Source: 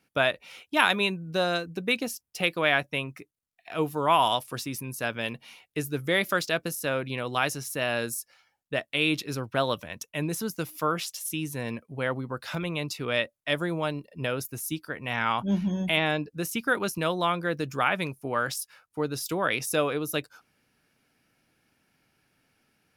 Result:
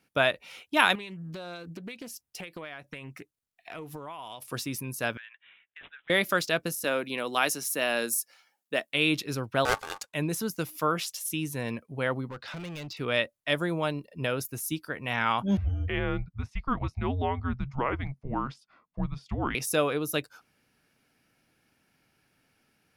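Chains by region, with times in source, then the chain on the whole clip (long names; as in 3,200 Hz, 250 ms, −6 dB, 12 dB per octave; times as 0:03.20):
0:00.95–0:04.42: downward compressor 16 to 1, threshold −36 dBFS + highs frequency-modulated by the lows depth 0.28 ms
0:05.17–0:06.10: four-pole ladder high-pass 1,500 Hz, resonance 70% + bad sample-rate conversion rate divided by 6×, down none, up filtered + downward compressor, threshold −42 dBFS
0:06.84–0:08.92: high-pass filter 190 Hz 24 dB per octave + high-shelf EQ 6,400 Hz +7 dB
0:09.65–0:10.14: each half-wave held at its own peak + low-pass filter 12,000 Hz + ring modulation 1,000 Hz
0:12.29–0:12.97: low-pass filter 5,300 Hz 24 dB per octave + gain into a clipping stage and back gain 32 dB + downward compressor 2 to 1, threshold −39 dBFS
0:15.57–0:19.55: head-to-tape spacing loss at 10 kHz 35 dB + frequency shifter −270 Hz
whole clip: no processing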